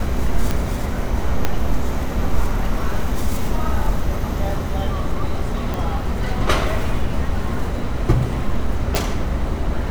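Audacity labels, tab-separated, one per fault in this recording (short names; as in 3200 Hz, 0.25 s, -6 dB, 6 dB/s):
0.510000	0.510000	pop
1.450000	1.450000	pop -4 dBFS
5.740000	5.740000	pop
8.950000	8.950000	pop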